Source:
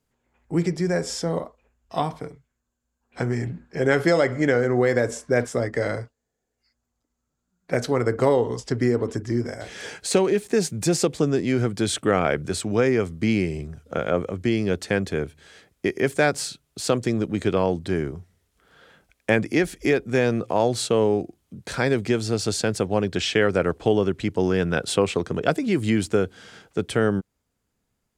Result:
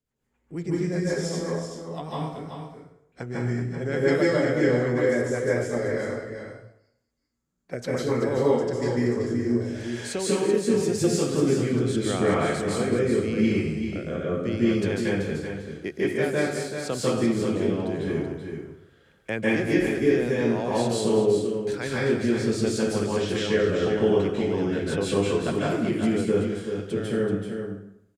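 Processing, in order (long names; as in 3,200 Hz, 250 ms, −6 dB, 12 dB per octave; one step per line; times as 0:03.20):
rotating-speaker cabinet horn 8 Hz, later 0.85 Hz, at 0:07.79
single-tap delay 382 ms −7.5 dB
convolution reverb RT60 0.75 s, pre-delay 137 ms, DRR −7 dB
level −8.5 dB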